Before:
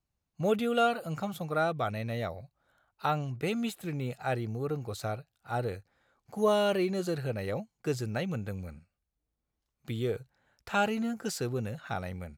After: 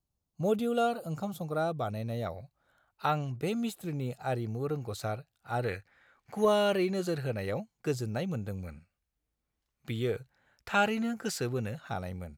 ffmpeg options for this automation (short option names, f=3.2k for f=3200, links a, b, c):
-af "asetnsamples=n=441:p=0,asendcmd='2.26 equalizer g 1;3.32 equalizer g -6;4.45 equalizer g 0;5.64 equalizer g 11.5;6.45 equalizer g 1;7.91 equalizer g -5.5;8.63 equalizer g 3.5;11.78 equalizer g -5',equalizer=f=2k:t=o:w=1.4:g=-10.5"